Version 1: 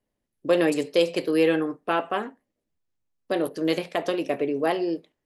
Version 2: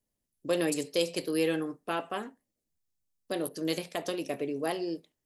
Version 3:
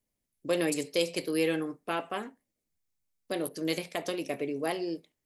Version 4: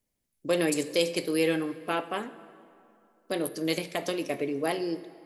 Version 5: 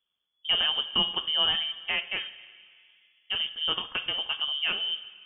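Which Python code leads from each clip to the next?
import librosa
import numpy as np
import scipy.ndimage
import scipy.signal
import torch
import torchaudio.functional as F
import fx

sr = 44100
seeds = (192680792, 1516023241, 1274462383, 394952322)

y1 = fx.bass_treble(x, sr, bass_db=5, treble_db=13)
y1 = F.gain(torch.from_numpy(y1), -8.5).numpy()
y2 = fx.peak_eq(y1, sr, hz=2200.0, db=6.0, octaves=0.25)
y3 = fx.rev_plate(y2, sr, seeds[0], rt60_s=2.6, hf_ratio=0.65, predelay_ms=0, drr_db=14.0)
y3 = F.gain(torch.from_numpy(y3), 2.5).numpy()
y4 = fx.freq_invert(y3, sr, carrier_hz=3400)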